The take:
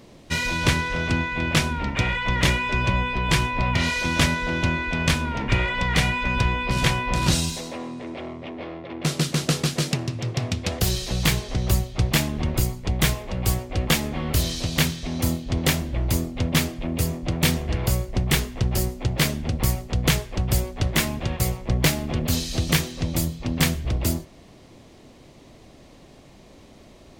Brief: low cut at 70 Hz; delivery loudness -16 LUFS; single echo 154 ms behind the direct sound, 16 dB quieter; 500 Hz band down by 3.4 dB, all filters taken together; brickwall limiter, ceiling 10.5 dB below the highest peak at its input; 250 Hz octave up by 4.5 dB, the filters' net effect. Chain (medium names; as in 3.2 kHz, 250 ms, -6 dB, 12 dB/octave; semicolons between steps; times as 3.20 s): high-pass 70 Hz; peaking EQ 250 Hz +8 dB; peaking EQ 500 Hz -8 dB; peak limiter -15 dBFS; delay 154 ms -16 dB; trim +10 dB